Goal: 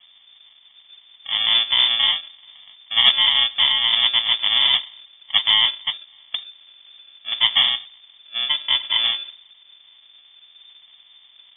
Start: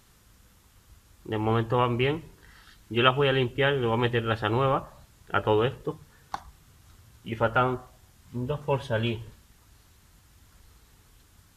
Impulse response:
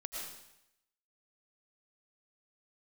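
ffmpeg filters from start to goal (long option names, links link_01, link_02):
-filter_complex "[0:a]asplit=2[link_01][link_02];[link_02]volume=21dB,asoftclip=hard,volume=-21dB,volume=-7dB[link_03];[link_01][link_03]amix=inputs=2:normalize=0,acrusher=samples=42:mix=1:aa=0.000001,lowpass=frequency=3100:width_type=q:width=0.5098,lowpass=frequency=3100:width_type=q:width=0.6013,lowpass=frequency=3100:width_type=q:width=0.9,lowpass=frequency=3100:width_type=q:width=2.563,afreqshift=-3600,volume=4dB"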